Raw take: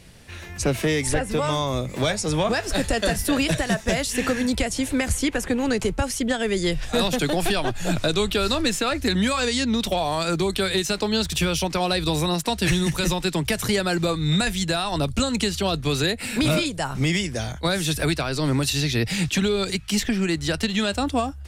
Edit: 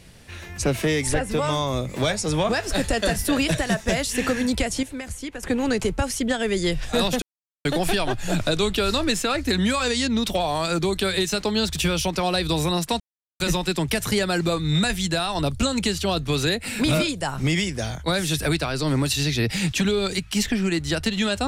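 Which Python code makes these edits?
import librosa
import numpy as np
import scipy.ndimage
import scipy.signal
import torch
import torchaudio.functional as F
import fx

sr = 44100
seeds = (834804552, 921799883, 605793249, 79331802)

y = fx.edit(x, sr, fx.clip_gain(start_s=4.83, length_s=0.6, db=-10.0),
    fx.insert_silence(at_s=7.22, length_s=0.43),
    fx.silence(start_s=12.57, length_s=0.4), tone=tone)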